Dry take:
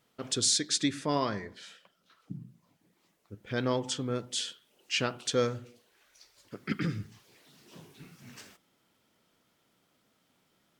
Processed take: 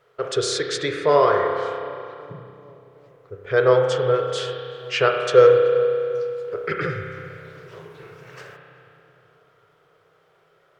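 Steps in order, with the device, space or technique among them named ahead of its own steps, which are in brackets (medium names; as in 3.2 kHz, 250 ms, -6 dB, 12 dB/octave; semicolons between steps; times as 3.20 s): FFT filter 150 Hz 0 dB, 240 Hz -23 dB, 420 Hz +14 dB, 870 Hz +3 dB, 1.3 kHz +10 dB, 2.6 kHz 0 dB, 8.6 kHz -10 dB; dub delay into a spring reverb (filtered feedback delay 379 ms, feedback 63%, low-pass 1 kHz, level -16 dB; spring tank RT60 2.5 s, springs 31 ms, chirp 65 ms, DRR 2.5 dB); trim +5 dB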